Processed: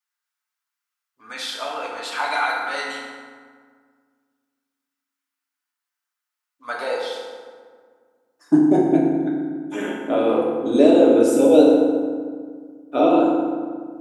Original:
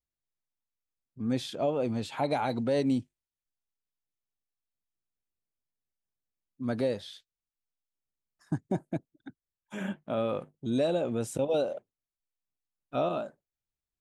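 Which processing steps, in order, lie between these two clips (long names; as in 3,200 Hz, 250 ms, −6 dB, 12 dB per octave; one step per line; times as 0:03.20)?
harmonic and percussive parts rebalanced harmonic −4 dB
high-pass filter sweep 1,300 Hz → 330 Hz, 0:06.53–0:07.65
feedback delay network reverb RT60 1.8 s, low-frequency decay 1.35×, high-frequency decay 0.55×, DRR −4.5 dB
level +7 dB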